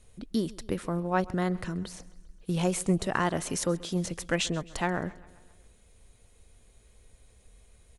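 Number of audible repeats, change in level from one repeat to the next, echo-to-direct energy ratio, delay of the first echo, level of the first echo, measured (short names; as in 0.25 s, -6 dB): 3, -4.5 dB, -19.0 dB, 0.133 s, -21.0 dB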